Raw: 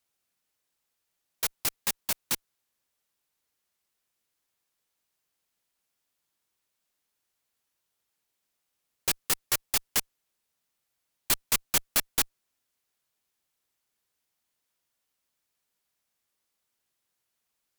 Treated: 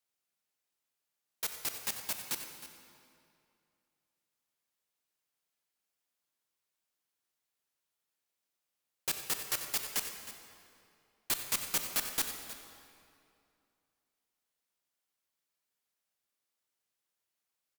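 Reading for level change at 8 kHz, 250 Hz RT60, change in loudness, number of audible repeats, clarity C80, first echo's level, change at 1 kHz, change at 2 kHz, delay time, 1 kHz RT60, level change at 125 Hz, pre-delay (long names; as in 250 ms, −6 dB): −6.0 dB, 2.6 s, −6.5 dB, 2, 6.0 dB, −14.5 dB, −6.0 dB, −6.0 dB, 91 ms, 2.4 s, −8.5 dB, 26 ms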